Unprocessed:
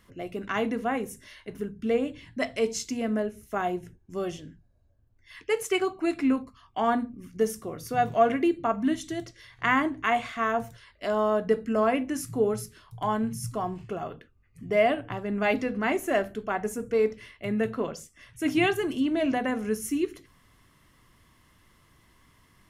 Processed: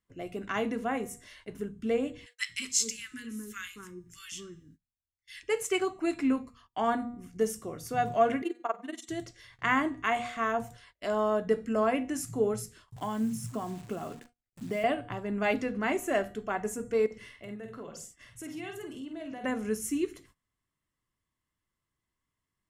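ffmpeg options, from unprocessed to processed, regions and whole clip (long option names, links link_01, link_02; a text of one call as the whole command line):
ffmpeg -i in.wav -filter_complex "[0:a]asettb=1/sr,asplit=3[link_01][link_02][link_03];[link_01]atrim=end=2.264[link_04];[link_02]atrim=start=2.26:end=5.43,asetpts=PTS-STARTPTS,afade=type=in:duration=0.004:curve=qsin,afade=type=out:start_time=3.166:duration=0.004:curve=qsin,asuperstop=centerf=680:order=4:qfactor=0.62,tiltshelf=frequency=1200:gain=-8,acrossover=split=1100[link_05][link_06];[link_05]adelay=230[link_07];[link_07][link_06]amix=inputs=2:normalize=0,atrim=end_sample=139797[link_08];[link_03]atrim=start=5.426[link_09];[link_04][link_08]acrossfade=duration=0.004:curve1=hsin:curve2=qsin[link_10];[link_10][link_09]acrossfade=duration=0.004:curve1=qsin:curve2=hsin,asettb=1/sr,asplit=3[link_11][link_12][link_13];[link_11]atrim=end=8.424[link_14];[link_12]atrim=start=8.42:end=9.09,asetpts=PTS-STARTPTS,afade=type=in:duration=0.004:curve=qsin,afade=type=out:start_time=0.666:duration=0.004:curve=qsin,highpass=frequency=340:width=0.5412,highpass=frequency=340:width=1.3066,tremolo=f=21:d=0.947[link_15];[link_13]atrim=start=9.086[link_16];[link_14][link_15]acrossfade=duration=0.004:curve1=hsin:curve2=qsin[link_17];[link_17][link_16]acrossfade=duration=0.004:curve1=qsin:curve2=hsin,asettb=1/sr,asplit=3[link_18][link_19][link_20];[link_18]atrim=end=12.964[link_21];[link_19]atrim=start=12.96:end=14.84,asetpts=PTS-STARTPTS,afade=type=in:duration=0.004:curve=qsin,afade=type=out:start_time=1.876:duration=0.004:curve=qsin,acrossover=split=96|2700[link_22][link_23][link_24];[link_22]acompressor=threshold=-58dB:ratio=4[link_25];[link_23]acompressor=threshold=-30dB:ratio=4[link_26];[link_24]acompressor=threshold=-41dB:ratio=4[link_27];[link_25][link_26][link_27]amix=inputs=3:normalize=0,equalizer=frequency=240:width_type=o:width=0.58:gain=9,acrusher=bits=9:dc=4:mix=0:aa=0.000001[link_28];[link_20]atrim=start=14.836[link_29];[link_21][link_28]acrossfade=duration=0.004:curve1=hsin:curve2=qsin[link_30];[link_30][link_29]acrossfade=duration=0.004:curve1=qsin:curve2=hsin,asettb=1/sr,asplit=3[link_31][link_32][link_33];[link_31]atrim=end=17.064[link_34];[link_32]atrim=start=17.06:end=19.44,asetpts=PTS-STARTPTS,afade=type=in:duration=0.004:curve=qsin,afade=type=out:start_time=2.376:duration=0.004:curve=qsin,bandreject=frequency=2400:width=18,acompressor=threshold=-40dB:ratio=3:attack=3.2:release=140:knee=1:detection=peak,asplit=2[link_35][link_36];[link_36]adelay=49,volume=-5.5dB[link_37];[link_35][link_37]amix=inputs=2:normalize=0,atrim=end_sample=104958[link_38];[link_33]atrim=start=19.436[link_39];[link_34][link_38]acrossfade=duration=0.004:curve1=hsin:curve2=qsin[link_40];[link_40][link_39]acrossfade=duration=0.004:curve1=qsin:curve2=hsin,bandreject=frequency=239.8:width_type=h:width=4,bandreject=frequency=479.6:width_type=h:width=4,bandreject=frequency=719.4:width_type=h:width=4,bandreject=frequency=959.2:width_type=h:width=4,bandreject=frequency=1199:width_type=h:width=4,bandreject=frequency=1438.8:width_type=h:width=4,bandreject=frequency=1678.6:width_type=h:width=4,bandreject=frequency=1918.4:width_type=h:width=4,bandreject=frequency=2158.2:width_type=h:width=4,bandreject=frequency=2398:width_type=h:width=4,bandreject=frequency=2637.8:width_type=h:width=4,bandreject=frequency=2877.6:width_type=h:width=4,bandreject=frequency=3117.4:width_type=h:width=4,bandreject=frequency=3357.2:width_type=h:width=4,bandreject=frequency=3597:width_type=h:width=4,bandreject=frequency=3836.8:width_type=h:width=4,bandreject=frequency=4076.6:width_type=h:width=4,bandreject=frequency=4316.4:width_type=h:width=4,bandreject=frequency=4556.2:width_type=h:width=4,bandreject=frequency=4796:width_type=h:width=4,bandreject=frequency=5035.8:width_type=h:width=4,bandreject=frequency=5275.6:width_type=h:width=4,bandreject=frequency=5515.4:width_type=h:width=4,bandreject=frequency=5755.2:width_type=h:width=4,bandreject=frequency=5995:width_type=h:width=4,bandreject=frequency=6234.8:width_type=h:width=4,bandreject=frequency=6474.6:width_type=h:width=4,bandreject=frequency=6714.4:width_type=h:width=4,bandreject=frequency=6954.2:width_type=h:width=4,bandreject=frequency=7194:width_type=h:width=4,bandreject=frequency=7433.8:width_type=h:width=4,bandreject=frequency=7673.6:width_type=h:width=4,bandreject=frequency=7913.4:width_type=h:width=4,bandreject=frequency=8153.2:width_type=h:width=4,bandreject=frequency=8393:width_type=h:width=4,bandreject=frequency=8632.8:width_type=h:width=4,bandreject=frequency=8872.6:width_type=h:width=4,bandreject=frequency=9112.4:width_type=h:width=4,agate=range=-23dB:threshold=-53dB:ratio=16:detection=peak,equalizer=frequency=7700:width_type=o:width=0.37:gain=7,volume=-3dB" out.wav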